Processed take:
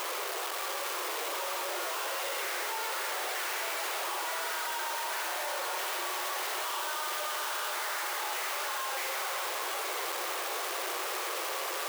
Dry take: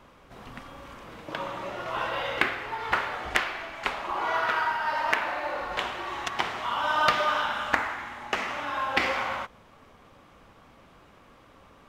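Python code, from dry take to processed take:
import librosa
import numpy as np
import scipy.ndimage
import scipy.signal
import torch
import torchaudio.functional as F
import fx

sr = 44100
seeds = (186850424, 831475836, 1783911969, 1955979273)

p1 = np.sign(x) * np.sqrt(np.mean(np.square(x)))
p2 = fx.brickwall_highpass(p1, sr, low_hz=330.0)
p3 = fx.high_shelf(p2, sr, hz=9700.0, db=6.5)
p4 = p3 + fx.echo_diffused(p3, sr, ms=796, feedback_pct=47, wet_db=-7, dry=0)
p5 = fx.env_flatten(p4, sr, amount_pct=50)
y = F.gain(torch.from_numpy(p5), -5.5).numpy()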